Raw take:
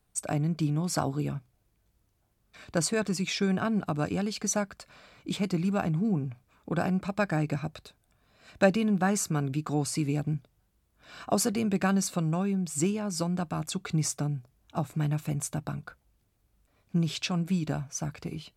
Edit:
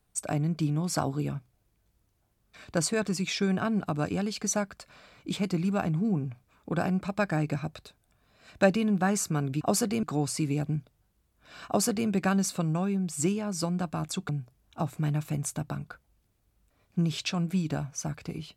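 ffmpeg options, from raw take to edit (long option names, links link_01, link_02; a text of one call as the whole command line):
ffmpeg -i in.wav -filter_complex "[0:a]asplit=4[link_01][link_02][link_03][link_04];[link_01]atrim=end=9.612[link_05];[link_02]atrim=start=11.248:end=11.672[link_06];[link_03]atrim=start=9.608:end=13.872[link_07];[link_04]atrim=start=14.258[link_08];[link_05][link_06]acrossfade=duration=0.004:curve1=hsin:curve2=hsin[link_09];[link_09][link_07]acrossfade=duration=0.004:curve1=hsin:curve2=hsin[link_10];[link_10][link_08]acrossfade=duration=0.004:curve1=hsin:curve2=hsin" out.wav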